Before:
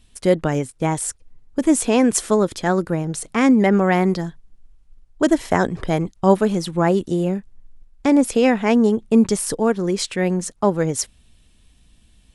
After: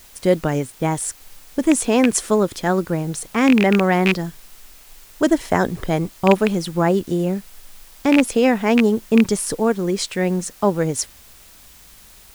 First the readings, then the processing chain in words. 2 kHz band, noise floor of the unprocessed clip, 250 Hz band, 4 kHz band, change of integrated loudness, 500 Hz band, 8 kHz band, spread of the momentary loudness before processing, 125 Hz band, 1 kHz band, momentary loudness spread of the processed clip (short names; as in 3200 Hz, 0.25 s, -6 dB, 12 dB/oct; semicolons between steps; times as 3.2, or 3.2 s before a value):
+2.5 dB, -55 dBFS, 0.0 dB, +2.0 dB, 0.0 dB, 0.0 dB, 0.0 dB, 8 LU, 0.0 dB, 0.0 dB, 8 LU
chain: rattling part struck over -19 dBFS, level -6 dBFS; added noise white -47 dBFS